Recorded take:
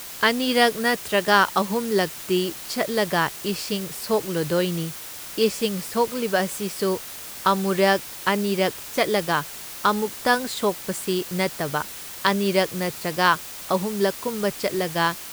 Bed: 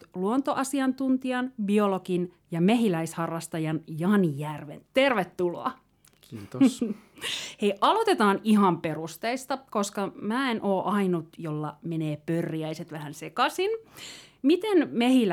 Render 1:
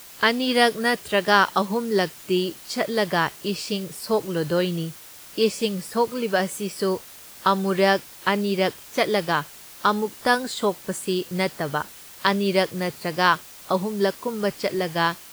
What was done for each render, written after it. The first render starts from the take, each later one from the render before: noise print and reduce 7 dB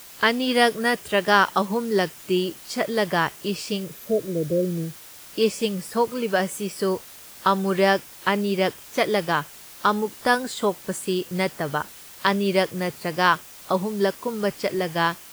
3.93–4.91 spectral repair 670–12000 Hz; dynamic EQ 4200 Hz, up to -4 dB, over -45 dBFS, Q 3.4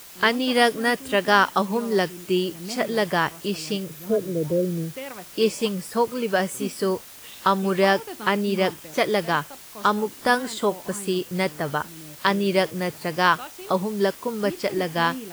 add bed -14 dB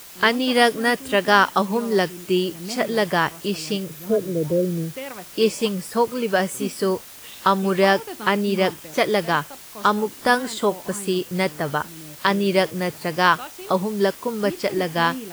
gain +2 dB; limiter -2 dBFS, peak gain reduction 1.5 dB

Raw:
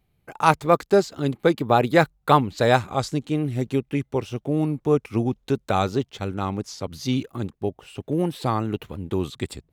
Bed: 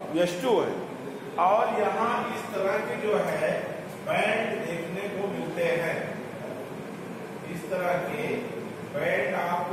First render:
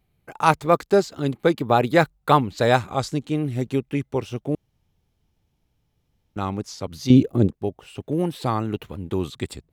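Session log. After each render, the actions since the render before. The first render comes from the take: 4.55–6.36 room tone; 7.1–7.53 resonant low shelf 740 Hz +10 dB, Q 1.5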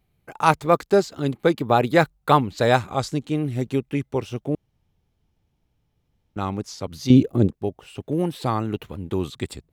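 4.49–6.39 high shelf 4000 Hz -5.5 dB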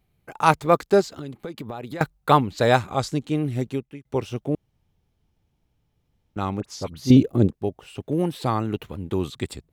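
1.01–2.01 compressor 8:1, threshold -30 dBFS; 3.57–4.05 fade out; 6.6–7.17 dispersion highs, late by 42 ms, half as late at 1900 Hz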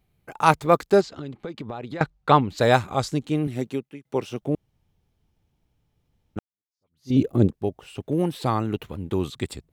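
1.01–2.5 LPF 5300 Hz; 3.47–4.42 HPF 160 Hz; 6.39–7.21 fade in exponential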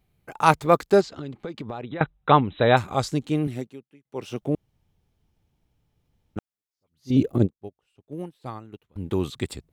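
1.82–2.77 brick-wall FIR low-pass 4000 Hz; 3.52–4.3 dip -13.5 dB, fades 0.17 s; 7.38–8.96 upward expander 2.5:1, over -32 dBFS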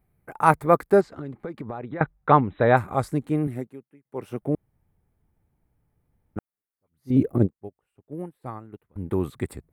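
band shelf 4400 Hz -14 dB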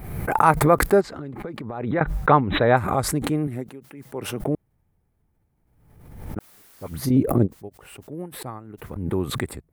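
backwards sustainer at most 52 dB/s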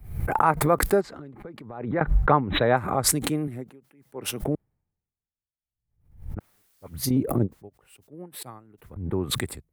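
compressor 3:1, threshold -22 dBFS, peak gain reduction 9.5 dB; three-band expander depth 100%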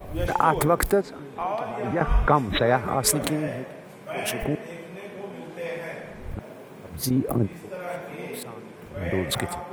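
add bed -6.5 dB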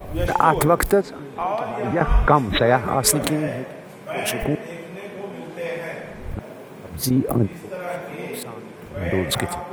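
gain +4 dB; limiter -1 dBFS, peak gain reduction 2.5 dB

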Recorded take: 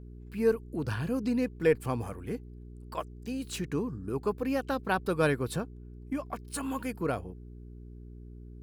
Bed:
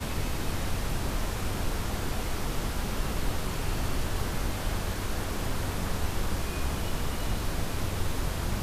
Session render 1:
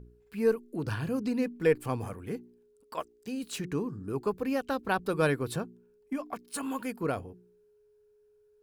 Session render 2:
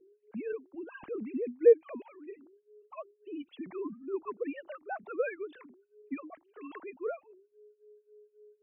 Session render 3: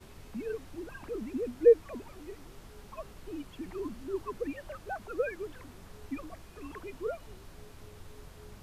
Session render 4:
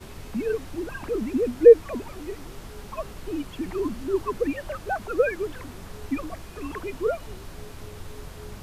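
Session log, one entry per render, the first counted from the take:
de-hum 60 Hz, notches 6
sine-wave speech; phaser stages 8, 3.7 Hz, lowest notch 420–2600 Hz
add bed -20 dB
gain +10 dB; limiter -3 dBFS, peak gain reduction 2 dB

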